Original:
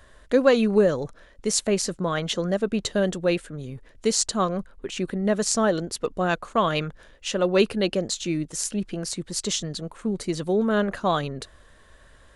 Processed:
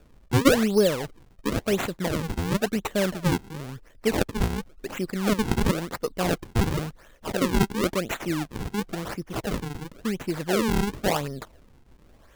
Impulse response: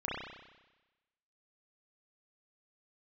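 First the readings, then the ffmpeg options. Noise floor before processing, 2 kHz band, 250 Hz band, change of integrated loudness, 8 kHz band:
-53 dBFS, 0.0 dB, -0.5 dB, -2.0 dB, -8.0 dB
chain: -af "acrusher=samples=42:mix=1:aa=0.000001:lfo=1:lforange=67.2:lforate=0.95,volume=-1.5dB"

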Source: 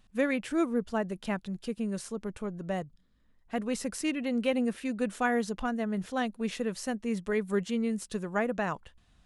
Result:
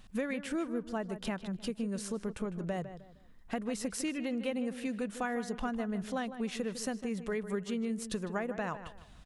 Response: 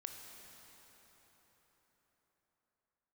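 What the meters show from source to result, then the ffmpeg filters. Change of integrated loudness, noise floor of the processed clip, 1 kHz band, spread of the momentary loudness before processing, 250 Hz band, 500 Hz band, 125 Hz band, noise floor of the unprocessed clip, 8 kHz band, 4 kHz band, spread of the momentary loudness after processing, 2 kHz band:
-4.5 dB, -55 dBFS, -5.0 dB, 7 LU, -4.0 dB, -5.0 dB, -2.5 dB, -65 dBFS, -1.0 dB, -2.5 dB, 3 LU, -5.5 dB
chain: -filter_complex "[0:a]acompressor=threshold=-42dB:ratio=4,asplit=2[a][b];[b]adelay=154,lowpass=f=2.5k:p=1,volume=-11dB,asplit=2[c][d];[d]adelay=154,lowpass=f=2.5k:p=1,volume=0.32,asplit=2[e][f];[f]adelay=154,lowpass=f=2.5k:p=1,volume=0.32[g];[c][e][g]amix=inputs=3:normalize=0[h];[a][h]amix=inputs=2:normalize=0,volume=7.5dB"

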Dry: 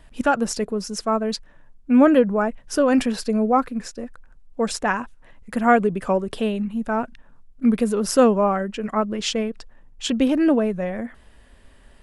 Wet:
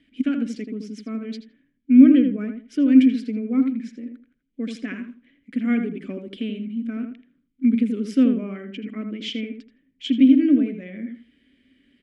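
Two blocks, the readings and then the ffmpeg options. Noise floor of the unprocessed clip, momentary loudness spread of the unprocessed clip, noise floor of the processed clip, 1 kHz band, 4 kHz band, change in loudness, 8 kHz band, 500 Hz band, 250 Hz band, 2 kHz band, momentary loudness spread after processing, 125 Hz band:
-51 dBFS, 14 LU, -70 dBFS, -23.5 dB, -5.0 dB, +1.0 dB, under -15 dB, -13.0 dB, +3.0 dB, -9.5 dB, 20 LU, n/a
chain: -filter_complex "[0:a]asplit=3[a][b][c];[a]bandpass=f=270:t=q:w=8,volume=0dB[d];[b]bandpass=f=2.29k:t=q:w=8,volume=-6dB[e];[c]bandpass=f=3.01k:t=q:w=8,volume=-9dB[f];[d][e][f]amix=inputs=3:normalize=0,asplit=2[g][h];[h]adelay=81,lowpass=f=1.8k:p=1,volume=-5.5dB,asplit=2[i][j];[j]adelay=81,lowpass=f=1.8k:p=1,volume=0.23,asplit=2[k][l];[l]adelay=81,lowpass=f=1.8k:p=1,volume=0.23[m];[g][i][k][m]amix=inputs=4:normalize=0,volume=7dB"

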